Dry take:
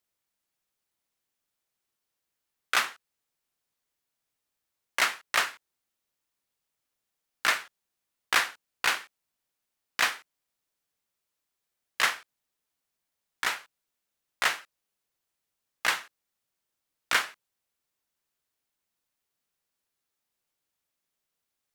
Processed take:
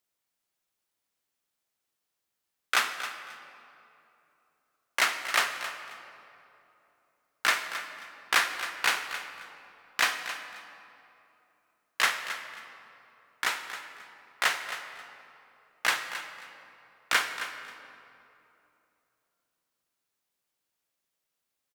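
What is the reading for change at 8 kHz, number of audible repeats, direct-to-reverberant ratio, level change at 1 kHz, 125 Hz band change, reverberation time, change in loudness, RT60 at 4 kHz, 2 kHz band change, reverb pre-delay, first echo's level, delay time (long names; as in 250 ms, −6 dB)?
+0.5 dB, 2, 6.5 dB, +1.0 dB, can't be measured, 3.0 s, −1.0 dB, 1.7 s, +0.5 dB, 27 ms, −12.0 dB, 268 ms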